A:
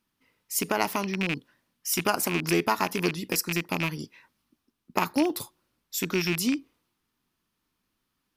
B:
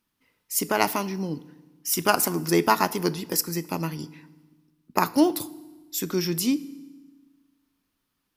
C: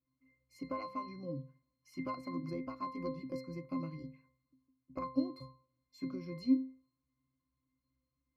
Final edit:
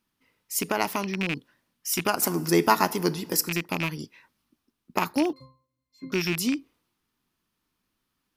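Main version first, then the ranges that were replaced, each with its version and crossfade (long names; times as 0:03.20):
A
0:02.22–0:03.49: punch in from B
0:05.33–0:06.12: punch in from C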